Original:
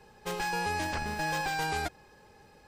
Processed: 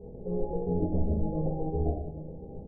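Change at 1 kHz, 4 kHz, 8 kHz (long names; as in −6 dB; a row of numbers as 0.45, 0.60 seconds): −10.5 dB, below −40 dB, below −40 dB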